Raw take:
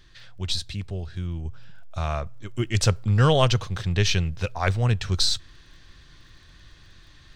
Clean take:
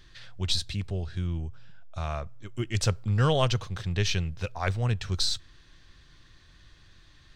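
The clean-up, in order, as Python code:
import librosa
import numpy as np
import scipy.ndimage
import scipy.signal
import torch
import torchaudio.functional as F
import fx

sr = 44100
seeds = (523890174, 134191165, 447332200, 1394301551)

y = fx.fix_declick_ar(x, sr, threshold=6.5)
y = fx.gain(y, sr, db=fx.steps((0.0, 0.0), (1.45, -5.0)))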